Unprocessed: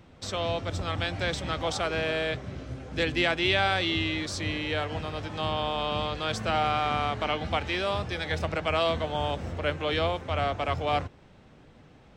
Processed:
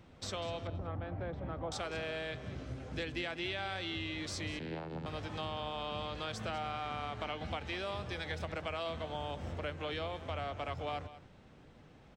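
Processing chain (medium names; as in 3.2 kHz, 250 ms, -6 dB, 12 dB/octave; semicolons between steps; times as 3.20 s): 0.67–1.72 s: low-pass 1 kHz 12 dB/octave; compression 4:1, threshold -32 dBFS, peak gain reduction 10.5 dB; 4.59–5.06 s: vocoder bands 8, saw 80.7 Hz; delay 196 ms -15 dB; trim -4.5 dB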